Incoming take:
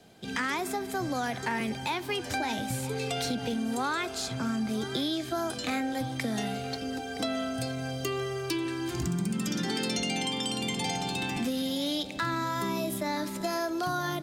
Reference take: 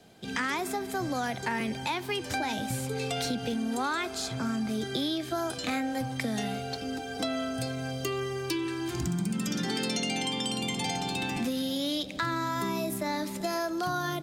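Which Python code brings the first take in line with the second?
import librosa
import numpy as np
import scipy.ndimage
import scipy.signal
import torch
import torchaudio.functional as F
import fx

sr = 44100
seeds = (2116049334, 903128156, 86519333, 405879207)

y = fx.fix_declip(x, sr, threshold_db=-20.0)
y = fx.fix_echo_inverse(y, sr, delay_ms=971, level_db=-17.0)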